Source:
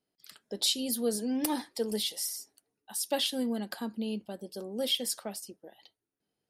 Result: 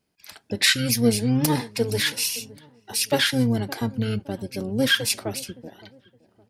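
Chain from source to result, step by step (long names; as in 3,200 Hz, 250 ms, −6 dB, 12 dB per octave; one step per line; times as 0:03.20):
delay with a low-pass on its return 566 ms, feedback 35%, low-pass 1,800 Hz, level −20 dB
pitch-shifted copies added −12 semitones −1 dB
level +7 dB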